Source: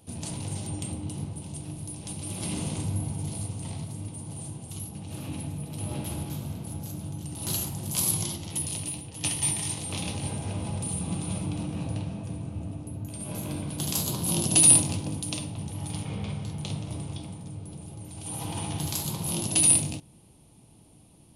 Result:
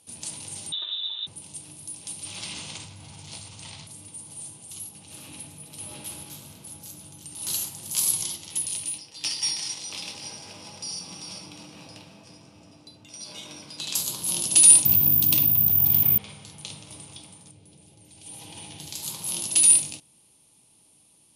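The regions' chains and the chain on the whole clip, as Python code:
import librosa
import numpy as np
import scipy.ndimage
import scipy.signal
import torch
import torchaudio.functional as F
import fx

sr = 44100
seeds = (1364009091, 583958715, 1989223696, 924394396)

y = fx.chain(x, sr, fx.comb(ms=3.5, depth=0.69),
    fx.freq_invert(carrier_hz=3800), at=(0.72, 1.27))
y = fx.chain(y, sr, fx.moving_average(points=4),
    fx.peak_eq(hz=320.0, db=-9.0, octaves=2.5),
    fx.env_flatten(amount_pct=70), at=(2.25, 3.87))
y = fx.chain(y, sr, fx.highpass(hz=190.0, slope=6),
    fx.resample_linear(factor=3), at=(8.98, 13.95))
y = fx.chain(y, sr, fx.bass_treble(bass_db=13, treble_db=-6),
    fx.resample_bad(factor=3, down='filtered', up='zero_stuff'),
    fx.env_flatten(amount_pct=70), at=(14.85, 16.18))
y = fx.chain(y, sr, fx.lowpass(hz=3400.0, slope=6),
    fx.peak_eq(hz=1200.0, db=-10.0, octaves=0.93), at=(17.51, 19.03))
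y = scipy.signal.sosfilt(scipy.signal.butter(2, 9600.0, 'lowpass', fs=sr, output='sos'), y)
y = fx.tilt_eq(y, sr, slope=3.5)
y = fx.notch(y, sr, hz=710.0, q=12.0)
y = y * librosa.db_to_amplitude(-4.5)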